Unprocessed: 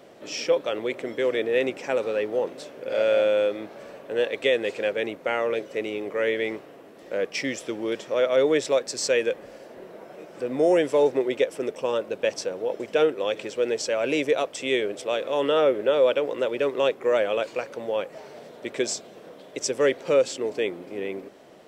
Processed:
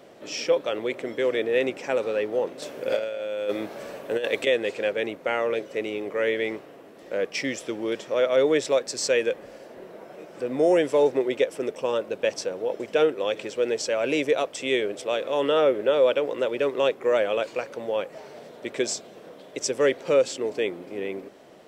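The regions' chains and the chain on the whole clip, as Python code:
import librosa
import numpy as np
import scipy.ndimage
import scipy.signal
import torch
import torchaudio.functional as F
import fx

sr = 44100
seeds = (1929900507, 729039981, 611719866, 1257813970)

y = fx.chain(x, sr, fx.high_shelf(hz=6500.0, db=7.5),
    fx.over_compress(threshold_db=-25.0, ratio=-0.5), at=(2.62, 4.47))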